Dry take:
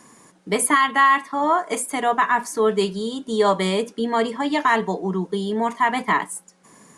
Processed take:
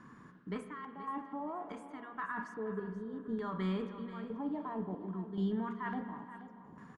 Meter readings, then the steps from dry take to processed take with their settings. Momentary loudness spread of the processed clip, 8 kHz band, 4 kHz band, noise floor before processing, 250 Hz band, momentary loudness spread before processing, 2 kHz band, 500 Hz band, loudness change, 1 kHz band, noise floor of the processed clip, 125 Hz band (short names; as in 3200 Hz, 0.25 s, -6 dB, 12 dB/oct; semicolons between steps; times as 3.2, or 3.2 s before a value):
11 LU, under -40 dB, -27.5 dB, -55 dBFS, -12.0 dB, 8 LU, -24.0 dB, -20.0 dB, -19.0 dB, -23.0 dB, -56 dBFS, -10.0 dB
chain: bell 2100 Hz -8.5 dB 0.63 oct; LFO low-pass square 0.59 Hz 700–1500 Hz; reverse; compressor, threshold -25 dBFS, peak gain reduction 14.5 dB; reverse; limiter -22.5 dBFS, peak gain reduction 7.5 dB; passive tone stack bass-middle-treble 6-0-2; chopper 0.93 Hz, depth 60%, duty 60%; on a send: feedback echo 0.479 s, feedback 28%, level -13.5 dB; on the sum: spring tank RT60 2 s, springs 36/48 ms, chirp 25 ms, DRR 9 dB; gain +16 dB